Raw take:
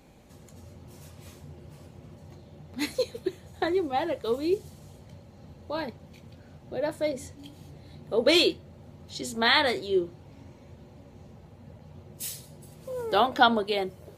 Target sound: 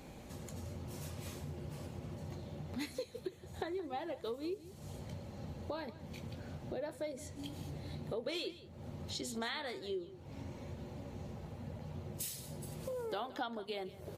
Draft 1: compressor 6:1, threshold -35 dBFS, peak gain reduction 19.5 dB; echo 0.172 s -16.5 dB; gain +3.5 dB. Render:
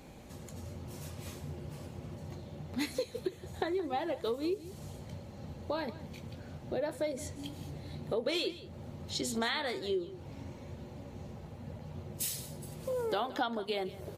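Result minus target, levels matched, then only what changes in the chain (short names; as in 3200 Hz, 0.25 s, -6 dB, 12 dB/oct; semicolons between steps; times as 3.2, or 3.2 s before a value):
compressor: peak gain reduction -6.5 dB
change: compressor 6:1, threshold -43 dBFS, peak gain reduction 26 dB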